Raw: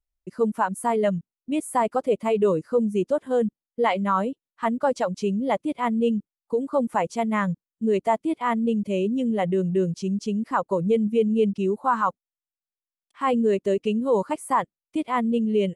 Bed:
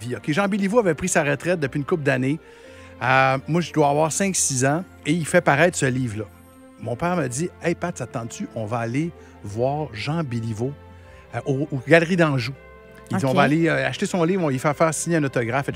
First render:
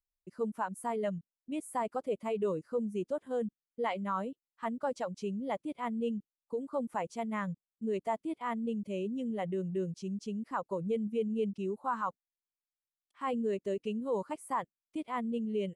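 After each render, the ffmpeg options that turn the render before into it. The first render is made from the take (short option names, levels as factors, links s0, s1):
-af "volume=0.266"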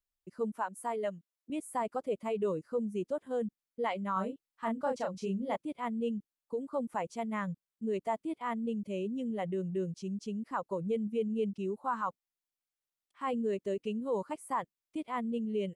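-filter_complex "[0:a]asettb=1/sr,asplit=3[s0][s1][s2];[s0]atrim=end=0.574[s3];[s1]atrim=start=0.57:end=1.5,asetpts=PTS-STARTPTS,afade=t=in:d=0.004:c=qsin,afade=t=out:st=0.926:d=0.004:c=qsin,highpass=290[s4];[s2]atrim=start=1.496[s5];[s3][s4]acrossfade=d=0.004:c1=hsin:c2=qsin[s6];[s6][s5]acrossfade=d=0.004:c1=qsin:c2=hsin,asettb=1/sr,asplit=3[s7][s8][s9];[s7]atrim=end=4.134[s10];[s8]atrim=start=4.13:end=5.56,asetpts=PTS-STARTPTS,afade=t=in:d=0.004:c=qsin,afade=t=out:st=1.426:d=0.004:c=qsin,asplit=2[s11][s12];[s12]adelay=31,volume=0.631[s13];[s11][s13]amix=inputs=2:normalize=0,atrim=end_sample=63063[s14];[s9]atrim=start=5.556[s15];[s10][s14]acrossfade=d=0.004:c1=hsin:c2=qsin[s16];[s16][s15]acrossfade=d=0.004:c1=qsin:c2=hsin"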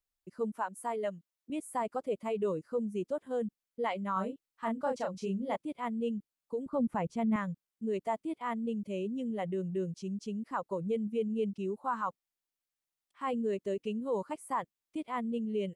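-filter_complex "[0:a]asettb=1/sr,asplit=3[s0][s1][s2];[s0]atrim=end=6.664[s3];[s1]atrim=start=6.66:end=7.36,asetpts=PTS-STARTPTS,afade=t=in:d=0.004:c=qsin,afade=t=out:st=0.696:d=0.004:c=qsin,bass=f=250:g=14,treble=f=4000:g=-6[s4];[s2]atrim=start=7.356[s5];[s3][s4]acrossfade=d=0.004:c1=hsin:c2=qsin[s6];[s6][s5]acrossfade=d=0.004:c1=qsin:c2=hsin"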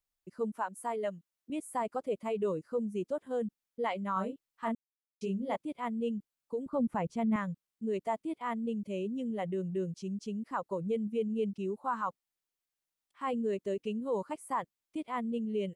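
-filter_complex "[0:a]asplit=3[s0][s1][s2];[s0]atrim=end=4.75,asetpts=PTS-STARTPTS,afade=t=out:st=4.746:d=0.004:c=hsin[s3];[s1]atrim=start=4.75:end=5.21,asetpts=PTS-STARTPTS,volume=0[s4];[s2]atrim=start=5.21,asetpts=PTS-STARTPTS,afade=t=in:d=0.004:c=hsin[s5];[s3][s4][s5]concat=n=3:v=0:a=1"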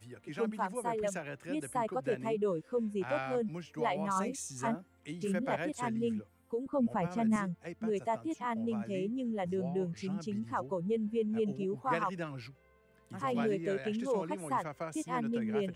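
-filter_complex "[1:a]volume=0.0841[s0];[0:a][s0]amix=inputs=2:normalize=0"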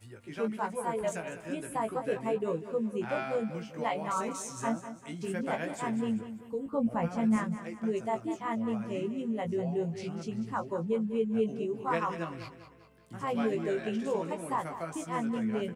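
-filter_complex "[0:a]asplit=2[s0][s1];[s1]adelay=18,volume=0.562[s2];[s0][s2]amix=inputs=2:normalize=0,asplit=2[s3][s4];[s4]aecho=0:1:197|394|591|788:0.251|0.111|0.0486|0.0214[s5];[s3][s5]amix=inputs=2:normalize=0"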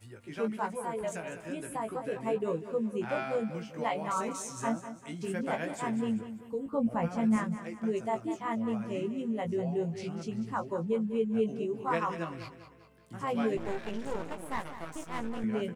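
-filter_complex "[0:a]asettb=1/sr,asplit=3[s0][s1][s2];[s0]atrim=end=0.694[s3];[s1]atrim=start=0.69:end=2.27,asetpts=PTS-STARTPTS,afade=t=in:d=0.004:c=qsin,afade=t=out:st=1.576:d=0.004:c=qsin,acompressor=threshold=0.0178:ratio=1.5:attack=3.2:release=140:knee=1:detection=peak[s4];[s2]atrim=start=2.266[s5];[s3][s4]acrossfade=d=0.004:c1=hsin:c2=qsin[s6];[s6][s5]acrossfade=d=0.004:c1=qsin:c2=hsin,asettb=1/sr,asplit=3[s7][s8][s9];[s7]atrim=end=13.574[s10];[s8]atrim=start=13.57:end=15.44,asetpts=PTS-STARTPTS,afade=t=in:d=0.004:c=qsin,afade=t=out:st=1.866:d=0.004:c=qsin,aeval=exprs='max(val(0),0)':c=same[s11];[s9]atrim=start=15.436[s12];[s10][s11]acrossfade=d=0.004:c1=hsin:c2=qsin[s13];[s13][s12]acrossfade=d=0.004:c1=qsin:c2=hsin"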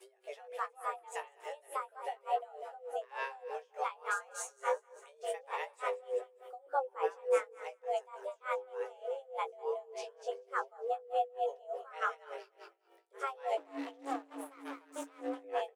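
-af "afreqshift=280,aeval=exprs='val(0)*pow(10,-24*(0.5-0.5*cos(2*PI*3.4*n/s))/20)':c=same"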